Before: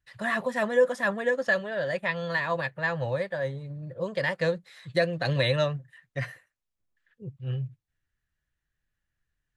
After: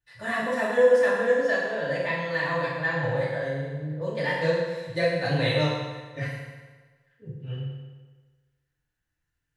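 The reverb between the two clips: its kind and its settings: FDN reverb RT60 1.4 s, low-frequency decay 0.9×, high-frequency decay 0.85×, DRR -8.5 dB; gain -7 dB

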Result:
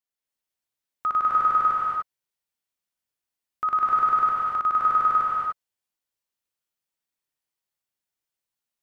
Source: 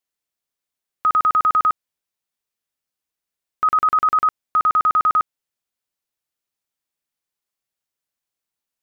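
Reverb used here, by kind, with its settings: non-linear reverb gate 0.32 s rising, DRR -4 dB; gain -8 dB

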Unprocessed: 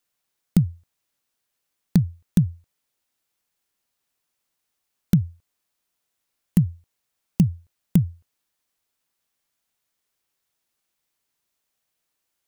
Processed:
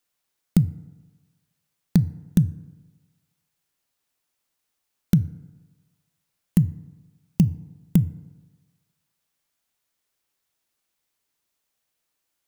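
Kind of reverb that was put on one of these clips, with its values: FDN reverb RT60 1.3 s, low-frequency decay 0.9×, high-frequency decay 0.4×, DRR 16.5 dB

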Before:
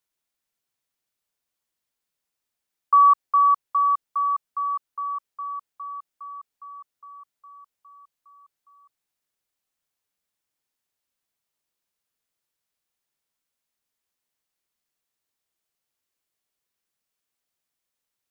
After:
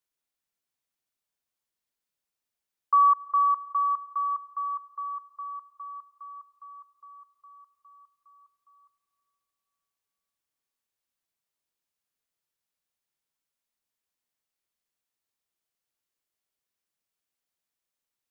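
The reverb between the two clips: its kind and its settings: digital reverb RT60 4.1 s, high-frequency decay 0.35×, pre-delay 50 ms, DRR 19.5 dB; gain -4.5 dB

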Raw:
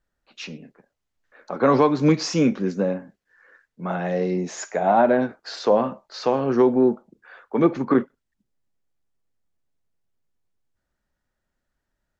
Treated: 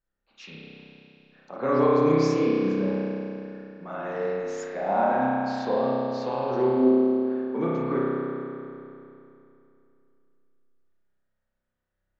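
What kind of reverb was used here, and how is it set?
spring tank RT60 2.8 s, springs 31 ms, chirp 25 ms, DRR -7 dB; gain -11.5 dB

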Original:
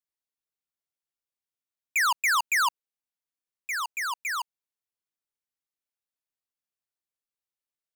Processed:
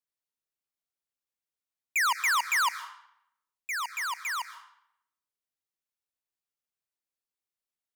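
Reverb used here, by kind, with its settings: digital reverb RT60 0.74 s, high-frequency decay 0.85×, pre-delay 90 ms, DRR 13.5 dB; gain -2 dB

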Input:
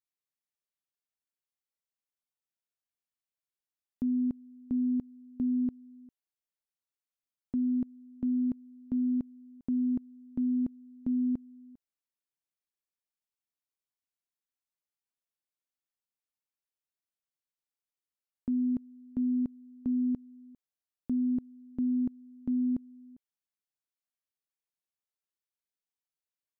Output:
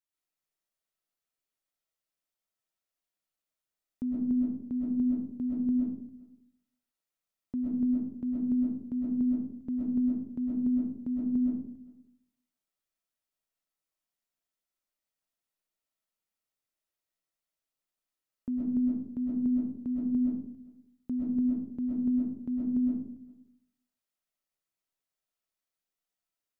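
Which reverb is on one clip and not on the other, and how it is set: digital reverb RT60 0.65 s, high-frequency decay 0.3×, pre-delay 85 ms, DRR -5.5 dB; gain -2.5 dB

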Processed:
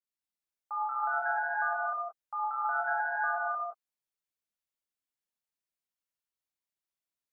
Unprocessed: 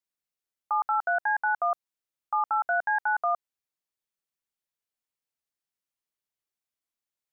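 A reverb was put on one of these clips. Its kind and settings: non-linear reverb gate 0.4 s flat, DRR -8 dB; gain -12.5 dB

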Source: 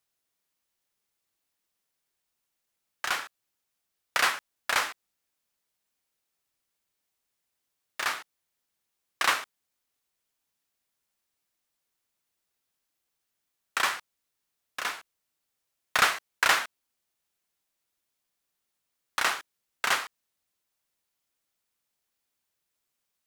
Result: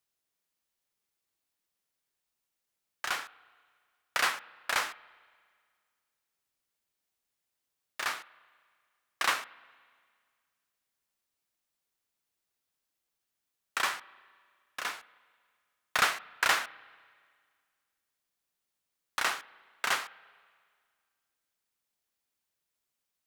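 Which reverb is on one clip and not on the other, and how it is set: spring tank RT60 1.9 s, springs 34/58 ms, chirp 65 ms, DRR 20 dB; gain -3.5 dB

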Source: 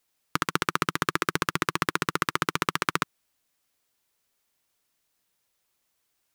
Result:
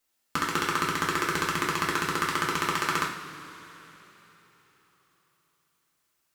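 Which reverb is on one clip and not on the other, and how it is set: two-slope reverb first 0.47 s, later 4 s, from -18 dB, DRR -4 dB; gain -5 dB

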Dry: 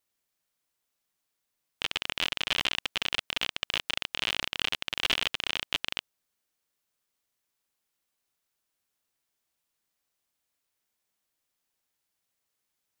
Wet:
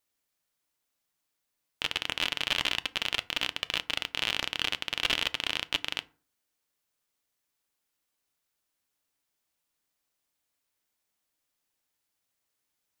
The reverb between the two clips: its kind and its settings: FDN reverb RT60 0.4 s, low-frequency decay 1.2×, high-frequency decay 0.55×, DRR 13.5 dB

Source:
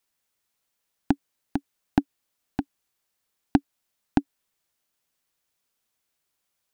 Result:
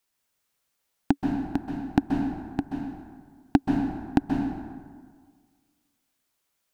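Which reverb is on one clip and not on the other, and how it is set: plate-style reverb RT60 1.7 s, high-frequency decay 0.55×, pre-delay 0.12 s, DRR 1.5 dB

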